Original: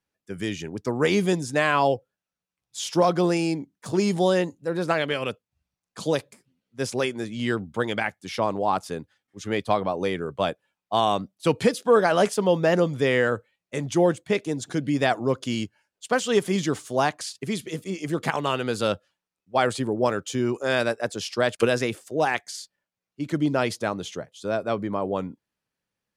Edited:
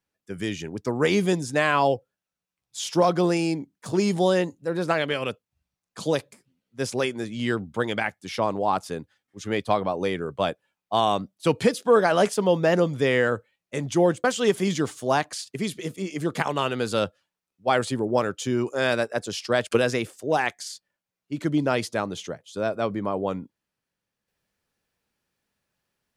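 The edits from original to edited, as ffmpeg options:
-filter_complex "[0:a]asplit=2[a][b];[a]atrim=end=14.242[c];[b]atrim=start=16.118[d];[c][d]acrossfade=d=0.004:c1=hsin:c2=hsin"

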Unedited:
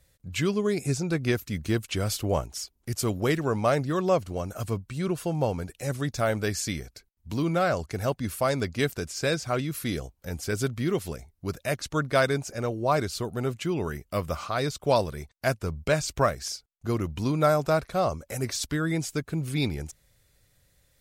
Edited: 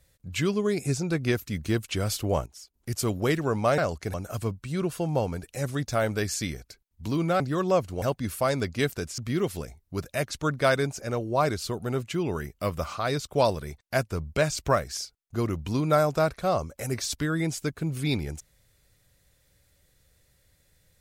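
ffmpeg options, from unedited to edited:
-filter_complex "[0:a]asplit=8[a][b][c][d][e][f][g][h];[a]atrim=end=2.462[i];[b]atrim=start=2.458:end=2.742,asetpts=PTS-STARTPTS,volume=-11dB[j];[c]atrim=start=2.738:end=3.782[k];[d]atrim=start=7.658:end=8.022[l];[e]atrim=start=4.398:end=7.662[m];[f]atrim=start=3.778:end=4.402[n];[g]atrim=start=8.018:end=9.182[o];[h]atrim=start=10.688[p];[i][j]acrossfade=d=0.004:c1=hsin:c2=hsin[q];[q][k]acrossfade=d=0.004:c1=hsin:c2=hsin[r];[r][l]acrossfade=d=0.004:c1=hsin:c2=hsin[s];[s][m]acrossfade=d=0.004:c1=hsin:c2=hsin[t];[t][n]acrossfade=d=0.004:c1=hsin:c2=hsin[u];[u][o]acrossfade=d=0.004:c1=hsin:c2=hsin[v];[v][p]acrossfade=d=0.004:c1=hsin:c2=hsin"

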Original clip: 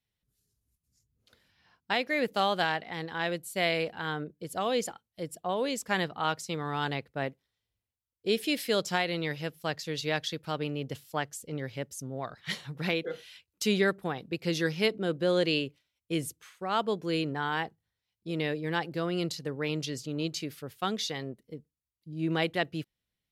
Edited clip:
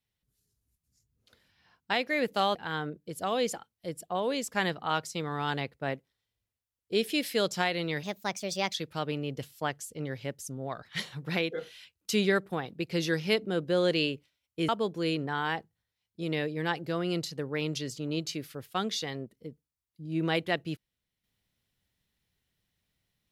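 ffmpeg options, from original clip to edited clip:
-filter_complex "[0:a]asplit=5[a][b][c][d][e];[a]atrim=end=2.552[f];[b]atrim=start=3.888:end=9.374[g];[c]atrim=start=9.37:end=10.26,asetpts=PTS-STARTPTS,asetrate=55566,aresample=44100[h];[d]atrim=start=10.256:end=16.212[i];[e]atrim=start=16.758[j];[f][g]acrossfade=d=0.004:c1=hsin:c2=hsin[k];[k][h]acrossfade=d=0.004:c1=hsin:c2=hsin[l];[l][i]acrossfade=d=0.004:c1=hsin:c2=hsin[m];[m][j]acrossfade=d=0.004:c1=hsin:c2=hsin"

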